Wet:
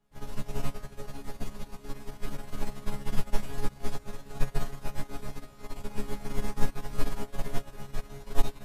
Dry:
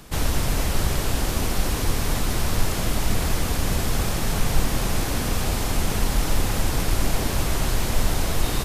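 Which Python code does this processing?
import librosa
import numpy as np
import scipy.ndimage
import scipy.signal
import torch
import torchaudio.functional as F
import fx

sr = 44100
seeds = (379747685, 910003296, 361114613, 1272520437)

y = fx.high_shelf(x, sr, hz=2100.0, db=-9.5)
y = fx.resonator_bank(y, sr, root=49, chord='fifth', decay_s=0.35)
y = y + 10.0 ** (-4.5 / 20.0) * np.pad(y, (int(269 * sr / 1000.0), 0))[:len(y)]
y = fx.upward_expand(y, sr, threshold_db=-39.0, expansion=2.5)
y = y * librosa.db_to_amplitude(13.0)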